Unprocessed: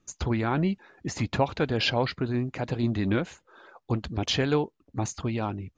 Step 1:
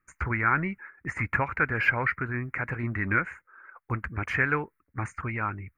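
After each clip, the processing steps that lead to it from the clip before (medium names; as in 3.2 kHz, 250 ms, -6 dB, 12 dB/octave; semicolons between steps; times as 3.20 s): peaking EQ 220 Hz -7 dB 1.4 oct; gate -50 dBFS, range -8 dB; FFT filter 220 Hz 0 dB, 720 Hz -8 dB, 1.4 kHz +12 dB, 2.2 kHz +11 dB, 3.5 kHz -29 dB, 6.6 kHz -17 dB, 10 kHz +10 dB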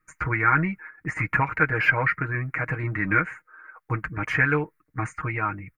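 comb 6.4 ms, depth 84%; trim +1.5 dB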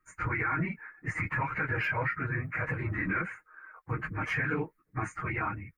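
phase randomisation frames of 50 ms; peak limiter -18 dBFS, peak gain reduction 10 dB; trim -4 dB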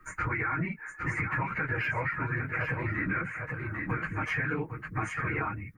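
on a send: delay 804 ms -8.5 dB; on the sum: three bands compressed up and down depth 70%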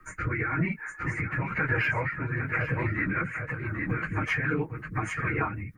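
rotary cabinet horn 1 Hz, later 6.3 Hz, at 2.23 s; trim +5 dB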